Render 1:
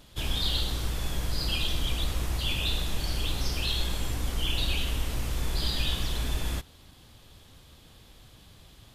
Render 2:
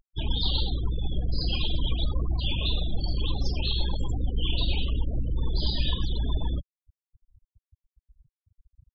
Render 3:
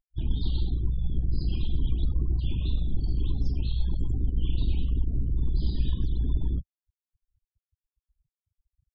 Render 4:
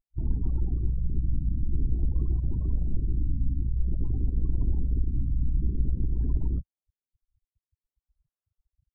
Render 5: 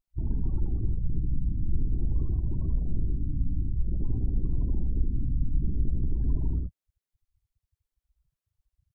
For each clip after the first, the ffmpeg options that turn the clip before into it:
-af "afftfilt=real='re*gte(hypot(re,im),0.0316)':imag='im*gte(hypot(re,im),0.0316)':win_size=1024:overlap=0.75,equalizer=f=1k:t=o:w=0.67:g=9,equalizer=f=2.5k:t=o:w=0.67:g=-8,equalizer=f=6.3k:t=o:w=0.67:g=-4,volume=3.5dB"
-af "afwtdn=0.0501,volume=1dB"
-af "aexciter=amount=13.8:drive=10:freq=3.4k,afftfilt=real='re*lt(b*sr/1024,300*pow(1800/300,0.5+0.5*sin(2*PI*0.51*pts/sr)))':imag='im*lt(b*sr/1024,300*pow(1800/300,0.5+0.5*sin(2*PI*0.51*pts/sr)))':win_size=1024:overlap=0.75"
-filter_complex "[0:a]aecho=1:1:77:0.596,asplit=2[a][b];[b]asoftclip=type=tanh:threshold=-27.5dB,volume=-10dB[c];[a][c]amix=inputs=2:normalize=0,volume=-2dB"

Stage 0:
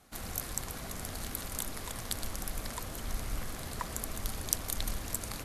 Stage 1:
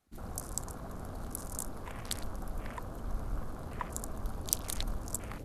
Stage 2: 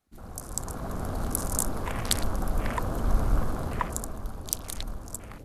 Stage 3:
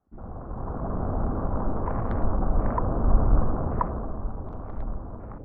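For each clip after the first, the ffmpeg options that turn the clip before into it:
-af "afwtdn=0.00562"
-af "dynaudnorm=f=120:g=11:m=14dB,volume=-1dB"
-af "lowpass=f=1.2k:w=0.5412,lowpass=f=1.2k:w=1.3066,volume=4.5dB"

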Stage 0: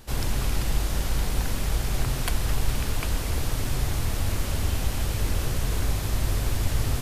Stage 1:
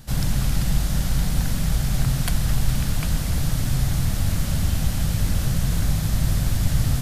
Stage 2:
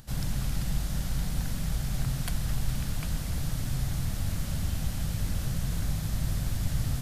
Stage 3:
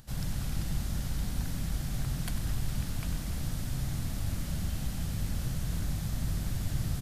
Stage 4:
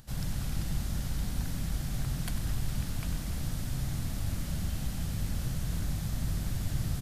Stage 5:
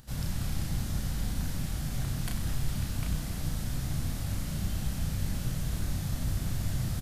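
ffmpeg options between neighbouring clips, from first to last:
-af "equalizer=f=160:t=o:w=0.67:g=11,equalizer=f=400:t=o:w=0.67:g=-10,equalizer=f=1k:t=o:w=0.67:g=-5,equalizer=f=2.5k:t=o:w=0.67:g=-4,volume=3dB"
-af "acompressor=mode=upward:threshold=-39dB:ratio=2.5,volume=-8.5dB"
-filter_complex "[0:a]asplit=8[a][b][c][d][e][f][g][h];[b]adelay=96,afreqshift=38,volume=-11dB[i];[c]adelay=192,afreqshift=76,volume=-15.2dB[j];[d]adelay=288,afreqshift=114,volume=-19.3dB[k];[e]adelay=384,afreqshift=152,volume=-23.5dB[l];[f]adelay=480,afreqshift=190,volume=-27.6dB[m];[g]adelay=576,afreqshift=228,volume=-31.8dB[n];[h]adelay=672,afreqshift=266,volume=-35.9dB[o];[a][i][j][k][l][m][n][o]amix=inputs=8:normalize=0,volume=-3.5dB"
-af anull
-filter_complex "[0:a]asplit=2[a][b];[b]adelay=33,volume=-4dB[c];[a][c]amix=inputs=2:normalize=0"

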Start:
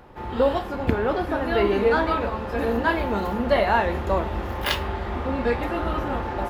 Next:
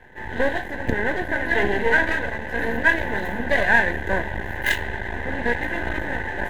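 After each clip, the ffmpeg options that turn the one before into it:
-af "aeval=exprs='max(val(0),0)':c=same,superequalizer=10b=0.251:11b=3.98:14b=0.447,volume=2dB"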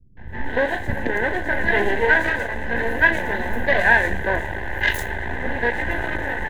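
-filter_complex "[0:a]acrossover=split=220|5100[a][b][c];[b]adelay=170[d];[c]adelay=280[e];[a][d][e]amix=inputs=3:normalize=0,volume=2dB"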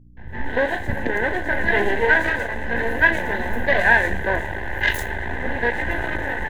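-af "aeval=exprs='val(0)+0.00398*(sin(2*PI*60*n/s)+sin(2*PI*2*60*n/s)/2+sin(2*PI*3*60*n/s)/3+sin(2*PI*4*60*n/s)/4+sin(2*PI*5*60*n/s)/5)':c=same"

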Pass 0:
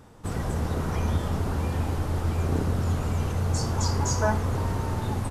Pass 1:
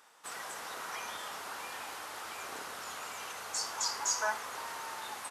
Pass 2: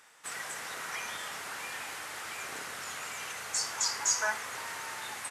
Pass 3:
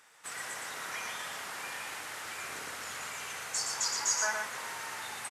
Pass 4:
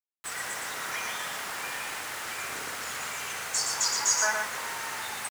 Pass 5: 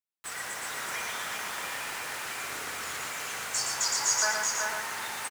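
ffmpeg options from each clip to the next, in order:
-af "highpass=1.2k"
-af "equalizer=f=125:t=o:w=1:g=8,equalizer=f=1k:t=o:w=1:g=-3,equalizer=f=2k:t=o:w=1:g=7,equalizer=f=8k:t=o:w=1:g=5"
-af "aecho=1:1:117:0.631,volume=-2dB"
-af "acrusher=bits=7:mix=0:aa=0.000001,volume=5dB"
-af "aecho=1:1:377:0.631,volume=-2dB"

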